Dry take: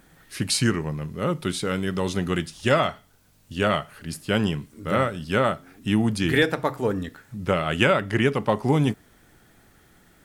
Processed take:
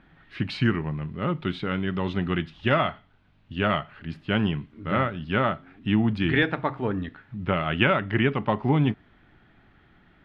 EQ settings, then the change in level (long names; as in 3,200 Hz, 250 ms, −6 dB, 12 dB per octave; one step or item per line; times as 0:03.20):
high-frequency loss of the air 220 metres
parametric band 490 Hz −7 dB 0.45 octaves
high shelf with overshoot 4,400 Hz −9.5 dB, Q 1.5
0.0 dB